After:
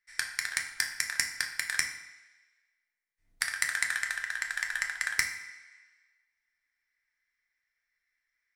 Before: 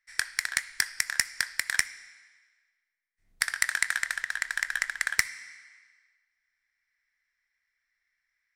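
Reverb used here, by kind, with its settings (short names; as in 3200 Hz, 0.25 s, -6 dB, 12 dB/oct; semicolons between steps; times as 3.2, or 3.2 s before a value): FDN reverb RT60 0.83 s, low-frequency decay 0.8×, high-frequency decay 0.65×, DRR 3 dB; gain -4 dB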